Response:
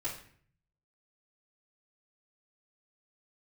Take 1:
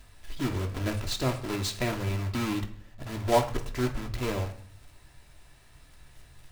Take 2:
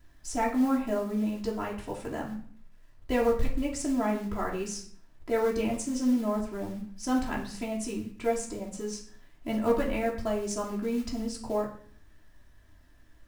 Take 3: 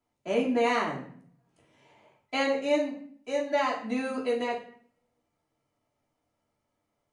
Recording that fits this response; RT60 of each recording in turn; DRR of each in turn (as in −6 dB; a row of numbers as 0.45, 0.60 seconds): 3; 0.55, 0.55, 0.55 seconds; 3.5, −5.0, −10.0 decibels